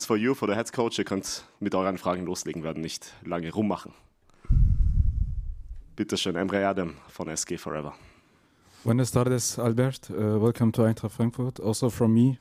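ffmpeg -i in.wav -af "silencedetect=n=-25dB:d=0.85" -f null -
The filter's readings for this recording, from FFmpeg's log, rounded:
silence_start: 7.89
silence_end: 8.86 | silence_duration: 0.97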